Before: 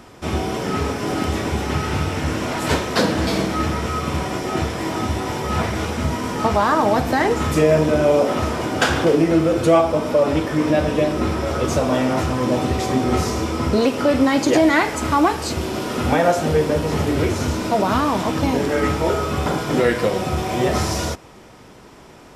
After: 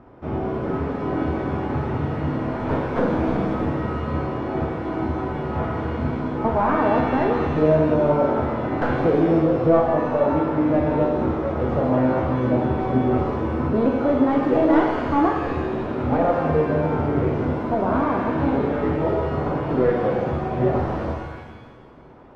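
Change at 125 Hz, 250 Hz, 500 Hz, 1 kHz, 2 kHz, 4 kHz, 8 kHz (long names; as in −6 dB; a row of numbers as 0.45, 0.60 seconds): −1.5 dB, −1.0 dB, −2.0 dB, −2.5 dB, −7.5 dB, below −15 dB, below −25 dB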